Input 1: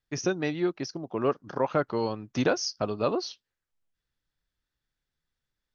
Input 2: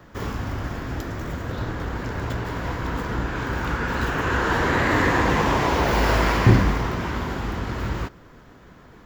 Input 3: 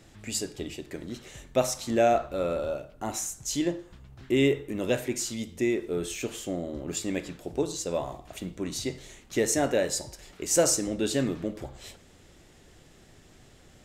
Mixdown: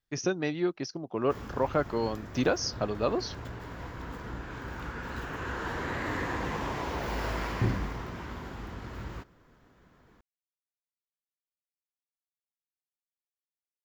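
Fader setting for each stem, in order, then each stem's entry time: -1.5 dB, -13.0 dB, mute; 0.00 s, 1.15 s, mute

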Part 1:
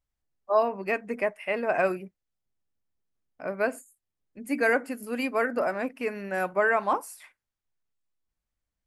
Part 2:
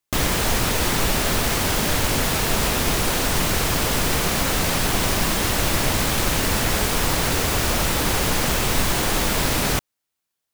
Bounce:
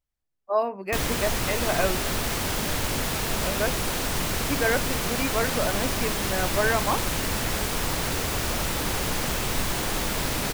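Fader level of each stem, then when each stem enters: -1.0 dB, -6.0 dB; 0.00 s, 0.80 s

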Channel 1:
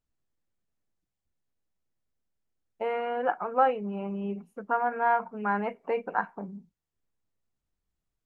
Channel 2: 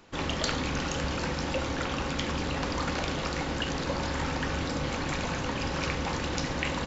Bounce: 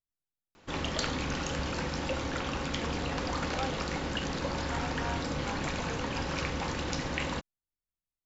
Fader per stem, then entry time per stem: -15.0 dB, -2.5 dB; 0.00 s, 0.55 s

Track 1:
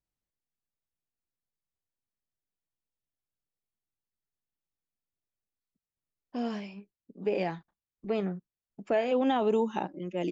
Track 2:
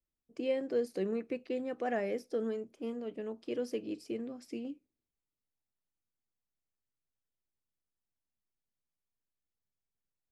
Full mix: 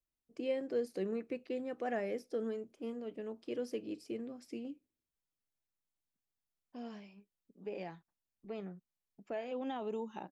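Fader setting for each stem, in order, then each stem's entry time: -13.0 dB, -3.0 dB; 0.40 s, 0.00 s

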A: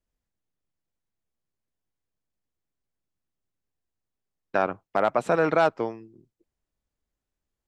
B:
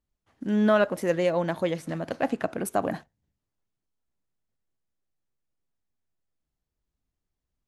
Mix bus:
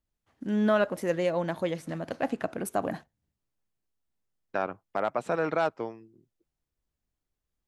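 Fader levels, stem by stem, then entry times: -6.0 dB, -3.0 dB; 0.00 s, 0.00 s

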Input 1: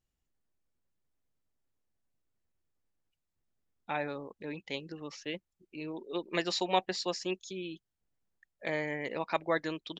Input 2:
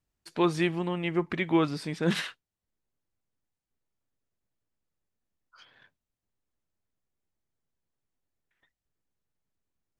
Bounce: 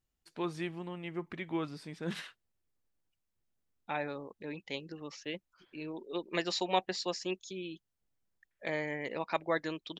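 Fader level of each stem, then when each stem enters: -1.5 dB, -11.0 dB; 0.00 s, 0.00 s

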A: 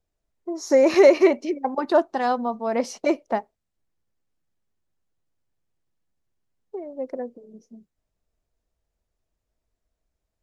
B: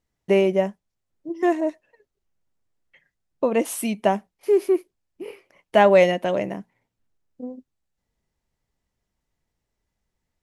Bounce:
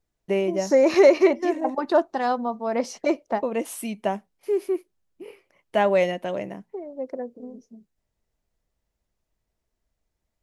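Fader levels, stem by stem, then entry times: -1.0 dB, -5.5 dB; 0.00 s, 0.00 s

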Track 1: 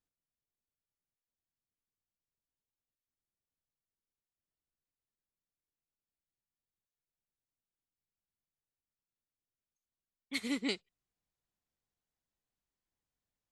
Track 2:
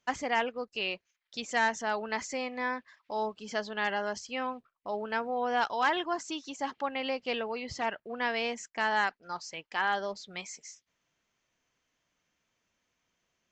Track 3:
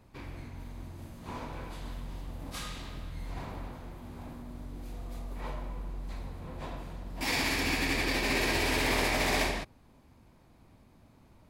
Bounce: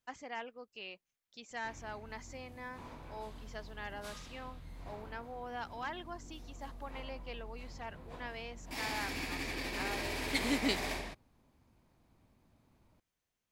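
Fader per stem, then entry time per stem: +2.0 dB, -13.5 dB, -9.5 dB; 0.00 s, 0.00 s, 1.50 s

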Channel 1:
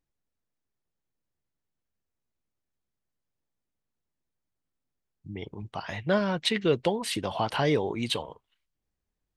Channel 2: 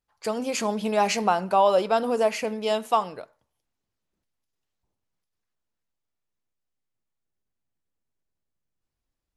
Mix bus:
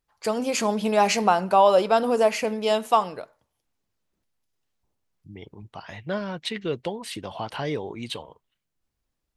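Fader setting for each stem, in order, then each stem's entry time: -4.0 dB, +2.5 dB; 0.00 s, 0.00 s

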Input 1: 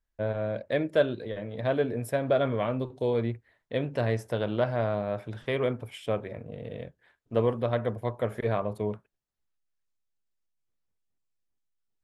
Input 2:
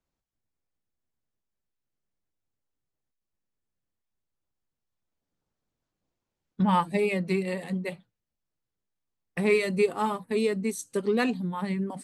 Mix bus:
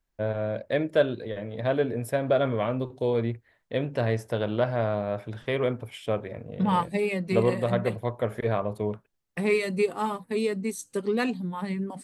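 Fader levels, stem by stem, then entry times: +1.5 dB, -1.0 dB; 0.00 s, 0.00 s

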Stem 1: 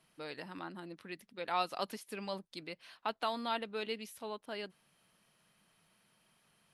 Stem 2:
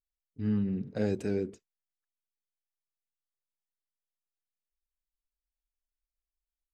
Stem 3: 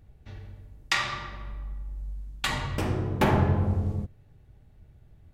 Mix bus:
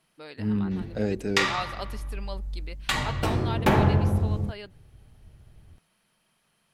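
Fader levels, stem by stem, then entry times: +1.0 dB, +2.5 dB, +2.0 dB; 0.00 s, 0.00 s, 0.45 s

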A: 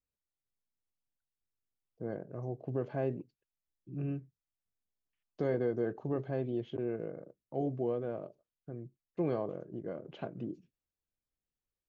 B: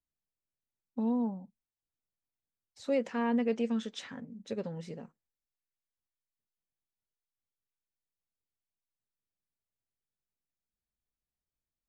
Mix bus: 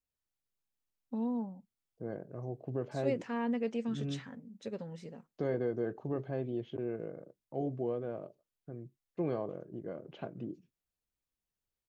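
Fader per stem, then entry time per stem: -1.5 dB, -4.0 dB; 0.00 s, 0.15 s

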